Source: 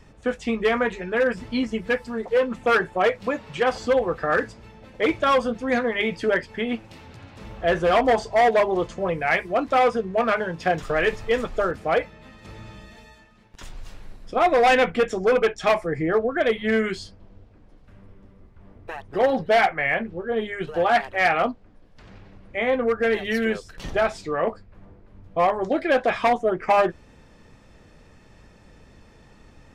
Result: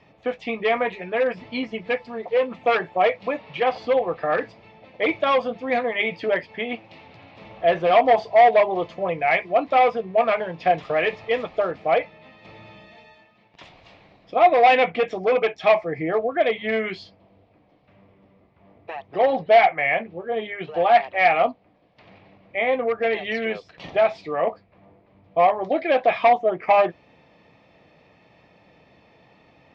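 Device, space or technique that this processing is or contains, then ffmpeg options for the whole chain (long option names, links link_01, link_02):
kitchen radio: -filter_complex "[0:a]highpass=160,equalizer=frequency=230:width_type=q:width=4:gain=-6,equalizer=frequency=390:width_type=q:width=4:gain=-4,equalizer=frequency=690:width_type=q:width=4:gain=6,equalizer=frequency=1500:width_type=q:width=4:gain=-9,equalizer=frequency=2300:width_type=q:width=4:gain=5,lowpass=frequency=4300:width=0.5412,lowpass=frequency=4300:width=1.3066,asettb=1/sr,asplit=3[link_01][link_02][link_03];[link_01]atrim=end=3.424[link_04];[link_02]atrim=start=3.42:end=4.42,asetpts=PTS-STARTPTS,afade=type=in:duration=0.004:curve=qsin,afade=type=out:start_time=0.996:duration=0.004:curve=qsin,lowpass=6300[link_05];[link_03]atrim=start=4.416[link_06];[link_04][link_05]acrossfade=duration=0.004:curve1=hsin:curve2=qsin[link_07];[link_07][link_06]acrossfade=duration=0.004:curve1=qsin:curve2=hsin"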